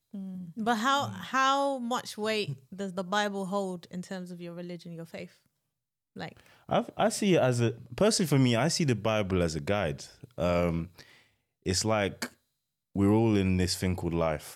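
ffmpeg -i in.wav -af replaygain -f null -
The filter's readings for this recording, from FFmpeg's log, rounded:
track_gain = +9.3 dB
track_peak = 0.127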